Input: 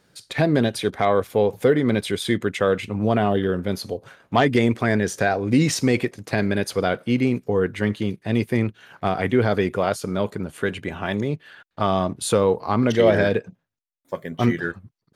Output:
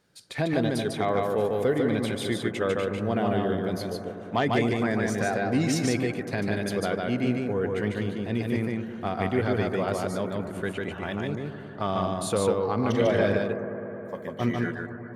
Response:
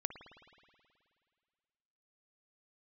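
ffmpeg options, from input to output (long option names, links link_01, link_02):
-filter_complex "[0:a]asplit=2[link_01][link_02];[1:a]atrim=start_sample=2205,asetrate=22491,aresample=44100,adelay=148[link_03];[link_02][link_03]afir=irnorm=-1:irlink=0,volume=-4.5dB[link_04];[link_01][link_04]amix=inputs=2:normalize=0,volume=-7.5dB"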